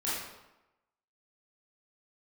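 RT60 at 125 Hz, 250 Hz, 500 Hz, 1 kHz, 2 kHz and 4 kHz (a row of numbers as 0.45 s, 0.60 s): 0.85 s, 0.95 s, 0.95 s, 1.0 s, 0.85 s, 0.70 s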